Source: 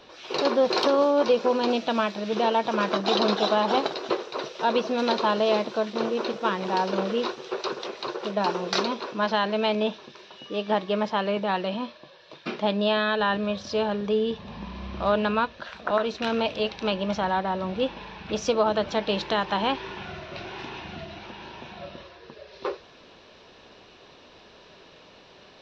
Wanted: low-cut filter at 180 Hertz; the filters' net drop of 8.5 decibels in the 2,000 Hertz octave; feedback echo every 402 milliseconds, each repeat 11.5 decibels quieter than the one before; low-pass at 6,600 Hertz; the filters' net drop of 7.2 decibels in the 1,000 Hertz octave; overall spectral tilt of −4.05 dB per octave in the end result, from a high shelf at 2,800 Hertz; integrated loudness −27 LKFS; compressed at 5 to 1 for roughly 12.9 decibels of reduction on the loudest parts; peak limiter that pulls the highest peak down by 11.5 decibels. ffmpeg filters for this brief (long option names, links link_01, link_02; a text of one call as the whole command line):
ffmpeg -i in.wav -af "highpass=180,lowpass=6600,equalizer=frequency=1000:width_type=o:gain=-7,equalizer=frequency=2000:width_type=o:gain=-7,highshelf=frequency=2800:gain=-5,acompressor=threshold=-34dB:ratio=5,alimiter=level_in=9dB:limit=-24dB:level=0:latency=1,volume=-9dB,aecho=1:1:402|804|1206:0.266|0.0718|0.0194,volume=15dB" out.wav